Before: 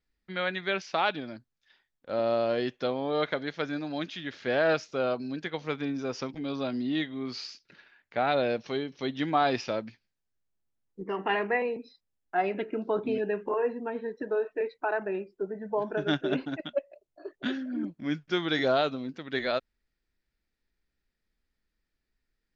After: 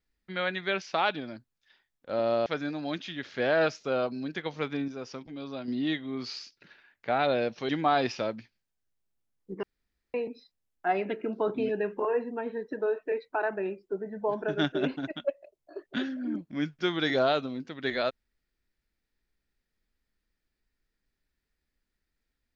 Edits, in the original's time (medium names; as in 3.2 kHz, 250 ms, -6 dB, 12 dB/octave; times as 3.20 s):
2.46–3.54 s: delete
5.96–6.76 s: gain -6 dB
8.77–9.18 s: delete
11.12–11.63 s: room tone